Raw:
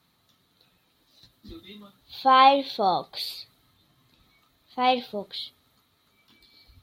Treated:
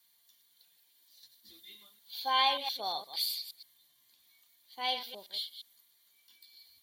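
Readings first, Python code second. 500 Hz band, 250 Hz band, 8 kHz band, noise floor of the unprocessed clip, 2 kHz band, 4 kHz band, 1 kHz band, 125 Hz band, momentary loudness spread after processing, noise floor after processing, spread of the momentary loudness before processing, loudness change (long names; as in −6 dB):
−16.5 dB, −23.0 dB, can't be measured, −68 dBFS, −8.0 dB, −1.5 dB, −13.0 dB, below −20 dB, 23 LU, −69 dBFS, 21 LU, −10.0 dB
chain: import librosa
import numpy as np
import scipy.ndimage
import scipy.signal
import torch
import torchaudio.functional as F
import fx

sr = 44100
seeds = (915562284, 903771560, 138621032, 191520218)

y = fx.reverse_delay(x, sr, ms=117, wet_db=-9.5)
y = librosa.effects.preemphasis(y, coef=0.97, zi=[0.0])
y = fx.notch_comb(y, sr, f0_hz=1300.0)
y = y * 10.0 ** (4.5 / 20.0)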